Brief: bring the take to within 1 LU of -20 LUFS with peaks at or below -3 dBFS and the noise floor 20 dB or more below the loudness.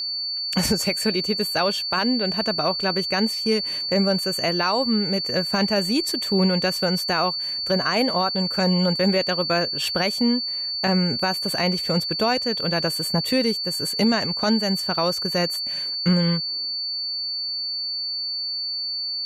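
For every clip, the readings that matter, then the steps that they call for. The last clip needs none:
ticks 23/s; steady tone 4500 Hz; tone level -25 dBFS; loudness -22.0 LUFS; peak -9.5 dBFS; loudness target -20.0 LUFS
-> de-click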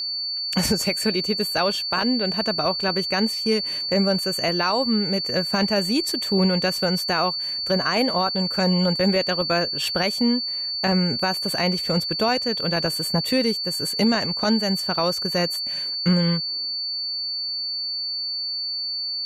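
ticks 0.052/s; steady tone 4500 Hz; tone level -25 dBFS
-> notch 4500 Hz, Q 30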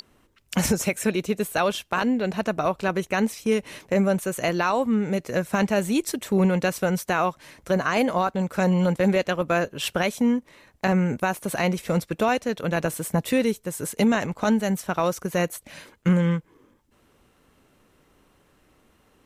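steady tone none; loudness -24.0 LUFS; peak -11.5 dBFS; loudness target -20.0 LUFS
-> gain +4 dB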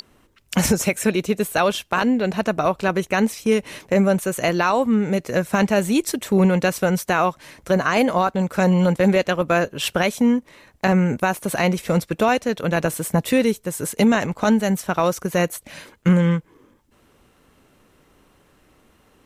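loudness -20.0 LUFS; peak -7.5 dBFS; noise floor -58 dBFS

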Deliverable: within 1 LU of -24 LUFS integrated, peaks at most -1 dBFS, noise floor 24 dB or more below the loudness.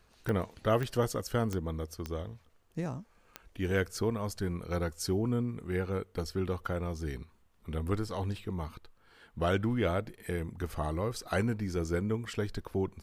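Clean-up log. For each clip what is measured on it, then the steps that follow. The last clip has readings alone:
clicks 5; loudness -34.0 LUFS; peak -16.5 dBFS; loudness target -24.0 LUFS
-> de-click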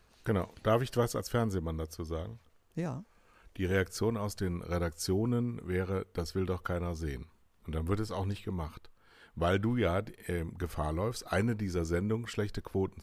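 clicks 0; loudness -34.0 LUFS; peak -16.5 dBFS; loudness target -24.0 LUFS
-> gain +10 dB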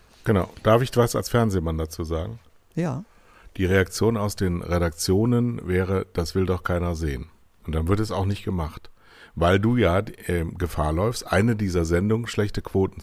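loudness -24.0 LUFS; peak -6.5 dBFS; noise floor -55 dBFS

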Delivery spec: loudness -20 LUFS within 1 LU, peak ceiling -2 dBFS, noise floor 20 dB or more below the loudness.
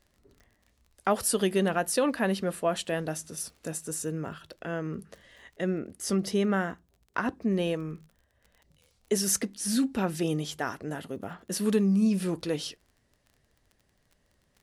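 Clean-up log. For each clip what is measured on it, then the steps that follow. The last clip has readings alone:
ticks 26/s; loudness -29.5 LUFS; peak -13.0 dBFS; loudness target -20.0 LUFS
-> de-click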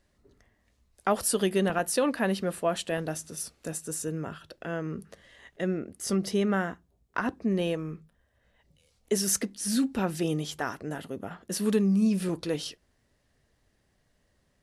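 ticks 0/s; loudness -29.5 LUFS; peak -13.0 dBFS; loudness target -20.0 LUFS
-> gain +9.5 dB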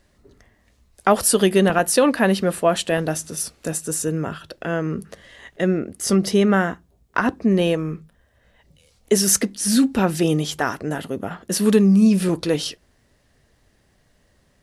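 loudness -20.0 LUFS; peak -3.5 dBFS; noise floor -62 dBFS

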